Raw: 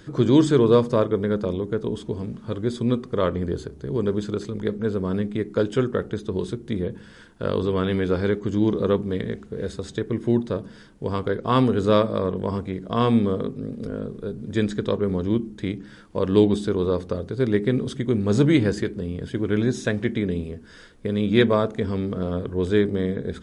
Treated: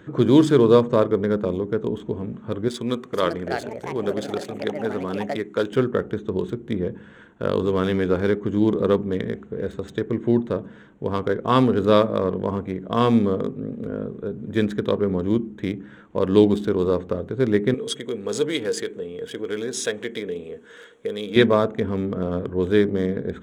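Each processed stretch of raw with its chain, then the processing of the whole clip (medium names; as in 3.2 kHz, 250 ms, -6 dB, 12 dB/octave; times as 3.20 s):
2.68–5.72 s: tilt EQ +2.5 dB/octave + ever faster or slower copies 450 ms, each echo +5 st, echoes 2, each echo -6 dB
17.74–21.36 s: compression 1.5:1, threshold -32 dBFS + RIAA curve recording + small resonant body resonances 460/3300 Hz, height 15 dB, ringing for 95 ms
whole clip: local Wiener filter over 9 samples; high-pass 130 Hz 6 dB/octave; trim +2.5 dB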